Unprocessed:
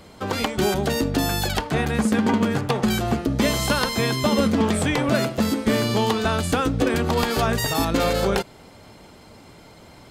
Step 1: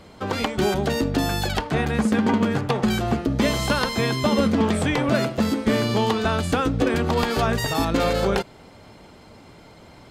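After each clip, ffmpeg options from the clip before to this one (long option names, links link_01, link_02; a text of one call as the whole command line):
ffmpeg -i in.wav -af "highshelf=frequency=7300:gain=-8.5" out.wav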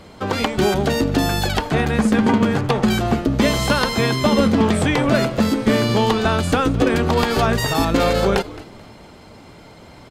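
ffmpeg -i in.wav -filter_complex "[0:a]asplit=4[link_01][link_02][link_03][link_04];[link_02]adelay=217,afreqshift=-93,volume=-18dB[link_05];[link_03]adelay=434,afreqshift=-186,volume=-27.6dB[link_06];[link_04]adelay=651,afreqshift=-279,volume=-37.3dB[link_07];[link_01][link_05][link_06][link_07]amix=inputs=4:normalize=0,volume=4dB" out.wav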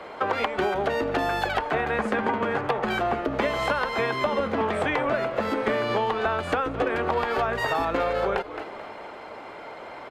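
ffmpeg -i in.wav -filter_complex "[0:a]acrossover=split=400 2600:gain=0.0708 1 0.112[link_01][link_02][link_03];[link_01][link_02][link_03]amix=inputs=3:normalize=0,acrossover=split=140[link_04][link_05];[link_05]acompressor=threshold=-30dB:ratio=10[link_06];[link_04][link_06]amix=inputs=2:normalize=0,volume=8dB" out.wav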